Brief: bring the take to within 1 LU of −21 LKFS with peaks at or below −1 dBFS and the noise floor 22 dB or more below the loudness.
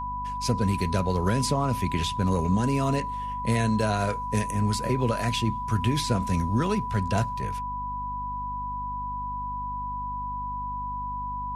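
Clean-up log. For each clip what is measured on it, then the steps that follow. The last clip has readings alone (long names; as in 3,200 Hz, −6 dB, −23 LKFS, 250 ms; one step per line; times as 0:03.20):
mains hum 50 Hz; hum harmonics up to 250 Hz; level of the hum −37 dBFS; interfering tone 990 Hz; level of the tone −30 dBFS; integrated loudness −27.5 LKFS; sample peak −11.0 dBFS; target loudness −21.0 LKFS
→ mains-hum notches 50/100/150/200/250 Hz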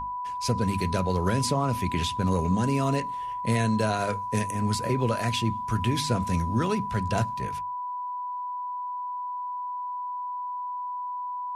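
mains hum none found; interfering tone 990 Hz; level of the tone −30 dBFS
→ notch filter 990 Hz, Q 30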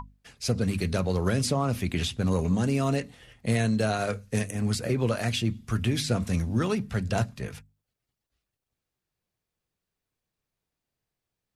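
interfering tone none found; integrated loudness −27.5 LKFS; sample peak −13.0 dBFS; target loudness −21.0 LKFS
→ level +6.5 dB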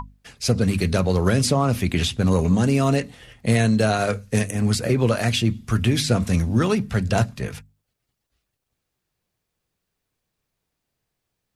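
integrated loudness −21.0 LKFS; sample peak −6.5 dBFS; background noise floor −80 dBFS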